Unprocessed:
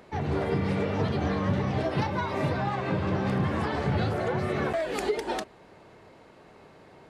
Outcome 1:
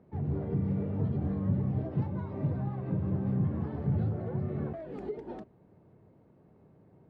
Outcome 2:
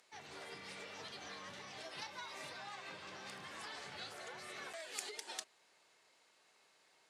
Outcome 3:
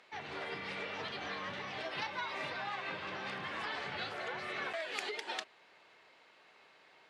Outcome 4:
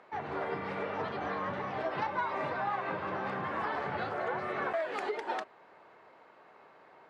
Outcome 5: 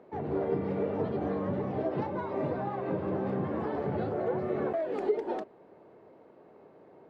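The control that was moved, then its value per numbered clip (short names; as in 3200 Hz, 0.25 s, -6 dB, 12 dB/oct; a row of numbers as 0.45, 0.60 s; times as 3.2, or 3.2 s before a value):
band-pass, frequency: 130, 7800, 3000, 1200, 420 Hz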